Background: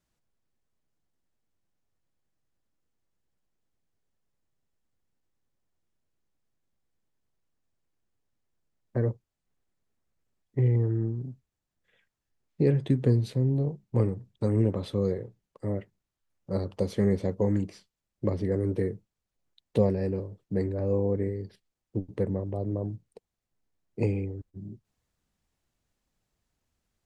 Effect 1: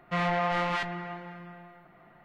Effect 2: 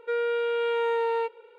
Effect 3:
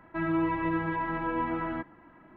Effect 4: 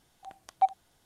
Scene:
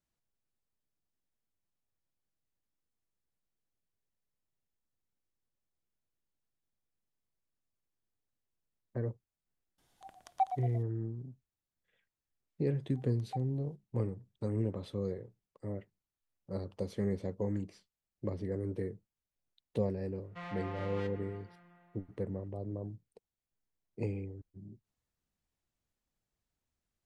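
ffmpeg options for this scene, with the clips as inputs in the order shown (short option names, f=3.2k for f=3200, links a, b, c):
-filter_complex "[4:a]asplit=2[a][b];[0:a]volume=-9dB[c];[a]asplit=6[d][e][f][g][h][i];[e]adelay=115,afreqshift=-33,volume=-9dB[j];[f]adelay=230,afreqshift=-66,volume=-15.6dB[k];[g]adelay=345,afreqshift=-99,volume=-22.1dB[l];[h]adelay=460,afreqshift=-132,volume=-28.7dB[m];[i]adelay=575,afreqshift=-165,volume=-35.2dB[n];[d][j][k][l][m][n]amix=inputs=6:normalize=0,atrim=end=1.05,asetpts=PTS-STARTPTS,volume=-6dB,afade=t=in:d=0.004:c=hsin,afade=t=out:st=1.046:d=0.004:c=hsin,adelay=431298S[o];[b]atrim=end=1.05,asetpts=PTS-STARTPTS,volume=-18dB,afade=t=in:d=0.004:c=hsin,afade=t=out:st=1.046:d=0.004:c=hsin,adelay=12710[p];[1:a]atrim=end=2.24,asetpts=PTS-STARTPTS,volume=-16.5dB,afade=t=in:d=0.004:c=hsin,afade=t=out:st=2.236:d=0.004:c=hsin,adelay=20240[q];[c][o][p][q]amix=inputs=4:normalize=0"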